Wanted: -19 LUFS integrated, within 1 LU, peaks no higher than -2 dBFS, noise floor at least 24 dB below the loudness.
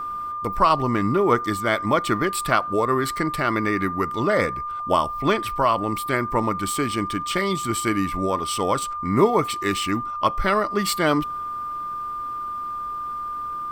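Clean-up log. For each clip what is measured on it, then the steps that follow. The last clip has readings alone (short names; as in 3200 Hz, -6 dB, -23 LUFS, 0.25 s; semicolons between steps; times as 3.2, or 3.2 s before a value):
steady tone 1200 Hz; tone level -27 dBFS; loudness -23.0 LUFS; peak -3.5 dBFS; loudness target -19.0 LUFS
-> notch 1200 Hz, Q 30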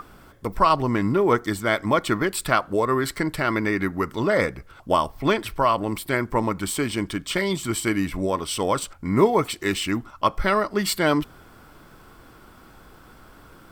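steady tone none; loudness -23.5 LUFS; peak -4.0 dBFS; loudness target -19.0 LUFS
-> gain +4.5 dB; limiter -2 dBFS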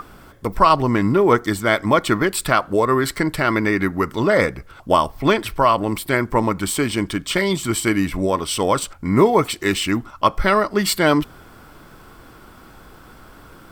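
loudness -19.0 LUFS; peak -2.0 dBFS; noise floor -45 dBFS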